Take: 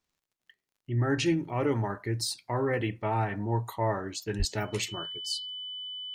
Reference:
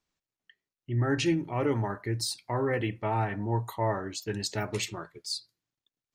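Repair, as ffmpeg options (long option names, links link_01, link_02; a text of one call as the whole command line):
ffmpeg -i in.wav -filter_complex "[0:a]adeclick=threshold=4,bandreject=frequency=3000:width=30,asplit=3[link_01][link_02][link_03];[link_01]afade=type=out:start_time=4.38:duration=0.02[link_04];[link_02]highpass=frequency=140:width=0.5412,highpass=frequency=140:width=1.3066,afade=type=in:start_time=4.38:duration=0.02,afade=type=out:start_time=4.5:duration=0.02[link_05];[link_03]afade=type=in:start_time=4.5:duration=0.02[link_06];[link_04][link_05][link_06]amix=inputs=3:normalize=0" out.wav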